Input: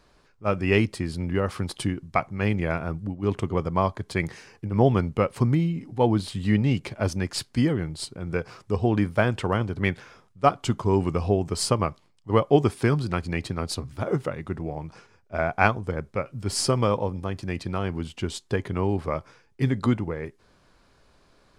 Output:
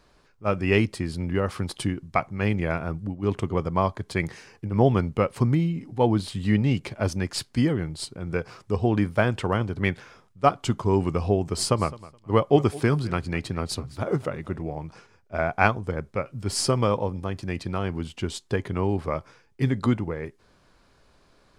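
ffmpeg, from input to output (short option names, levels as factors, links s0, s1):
-filter_complex "[0:a]asettb=1/sr,asplit=3[s0][s1][s2];[s0]atrim=end=11.364[s3];[s1]atrim=start=11.36:end=14.63,asetpts=PTS-STARTPTS,afade=t=in:d=0.004:c=qsin,afade=t=out:st=3.266:d=0.004:c=qsin,aecho=1:1:211|422:0.106|0.0191,atrim=end_sample=144207[s4];[s2]atrim=start=14.626[s5];[s3][s4]acrossfade=d=0.004:c1=hsin:c2=qsin[s6];[s6][s5]acrossfade=d=0.004:c1=qsin:c2=hsin"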